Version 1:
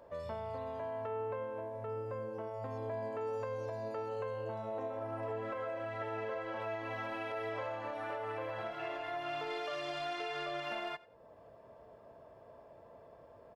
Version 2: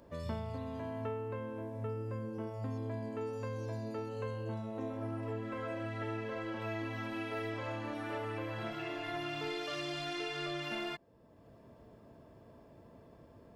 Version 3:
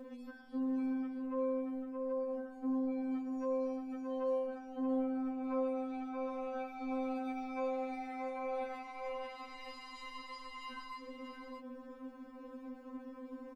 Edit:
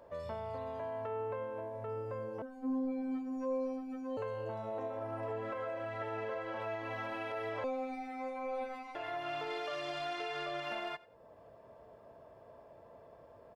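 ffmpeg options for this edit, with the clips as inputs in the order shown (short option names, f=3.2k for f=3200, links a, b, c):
-filter_complex "[2:a]asplit=2[a][b];[0:a]asplit=3[c][d][e];[c]atrim=end=2.422[f];[a]atrim=start=2.418:end=4.172[g];[d]atrim=start=4.168:end=7.642[h];[b]atrim=start=7.638:end=8.952[i];[e]atrim=start=8.948[j];[f][g]acrossfade=d=0.004:c1=hsin:c2=hsin[k];[k][h]acrossfade=d=0.004:c1=hsin:c2=hsin[l];[l][i]acrossfade=d=0.004:c1=hsin:c2=hsin[m];[m][j]acrossfade=d=0.004:c1=hsin:c2=hsin"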